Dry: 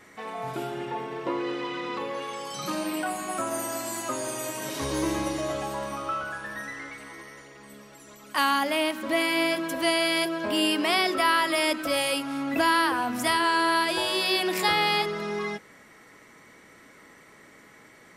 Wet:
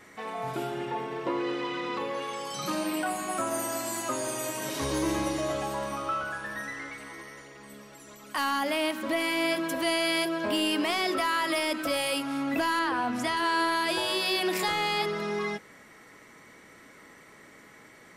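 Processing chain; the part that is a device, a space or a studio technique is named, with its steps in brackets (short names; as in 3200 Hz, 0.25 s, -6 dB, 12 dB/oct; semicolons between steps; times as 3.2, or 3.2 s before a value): soft clipper into limiter (soft clip -15 dBFS, distortion -19 dB; limiter -19.5 dBFS, peak gain reduction 4 dB); 12.79–13.37 air absorption 54 m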